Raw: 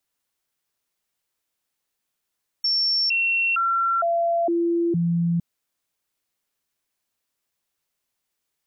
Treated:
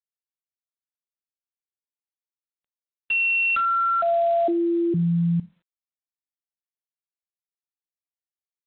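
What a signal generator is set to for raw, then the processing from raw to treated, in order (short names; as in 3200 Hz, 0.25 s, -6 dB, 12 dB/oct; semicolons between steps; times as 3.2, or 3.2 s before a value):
stepped sine 5440 Hz down, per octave 1, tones 6, 0.46 s, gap 0.00 s -18.5 dBFS
Schroeder reverb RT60 0.3 s, combs from 31 ms, DRR 17 dB; G.726 24 kbps 8000 Hz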